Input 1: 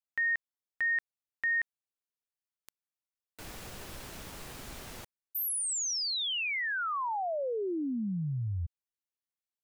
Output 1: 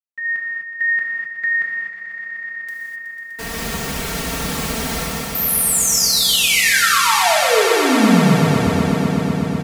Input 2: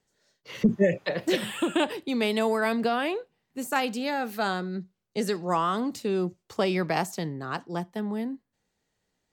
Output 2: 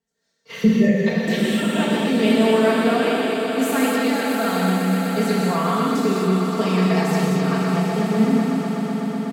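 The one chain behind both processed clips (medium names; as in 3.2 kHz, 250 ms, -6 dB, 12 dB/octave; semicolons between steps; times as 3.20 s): recorder AGC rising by 9.8 dB/s; high-pass 44 Hz; peaking EQ 140 Hz +6 dB 0.93 oct; expander -37 dBFS, range -8 dB; comb 4.4 ms, depth 78%; echo with a slow build-up 124 ms, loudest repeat 5, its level -11 dB; gated-style reverb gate 280 ms flat, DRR -4 dB; trim -3.5 dB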